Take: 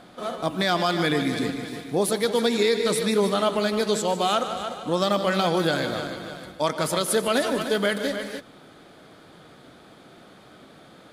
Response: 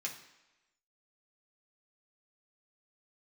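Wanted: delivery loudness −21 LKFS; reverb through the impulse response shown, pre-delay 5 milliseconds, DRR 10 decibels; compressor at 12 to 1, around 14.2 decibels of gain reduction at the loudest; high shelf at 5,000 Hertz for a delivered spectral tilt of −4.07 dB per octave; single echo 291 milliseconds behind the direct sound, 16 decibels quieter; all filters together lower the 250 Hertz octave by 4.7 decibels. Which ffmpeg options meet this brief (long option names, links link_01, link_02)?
-filter_complex "[0:a]equalizer=frequency=250:width_type=o:gain=-6.5,highshelf=frequency=5000:gain=-6.5,acompressor=threshold=-34dB:ratio=12,aecho=1:1:291:0.158,asplit=2[link_01][link_02];[1:a]atrim=start_sample=2205,adelay=5[link_03];[link_02][link_03]afir=irnorm=-1:irlink=0,volume=-10.5dB[link_04];[link_01][link_04]amix=inputs=2:normalize=0,volume=16.5dB"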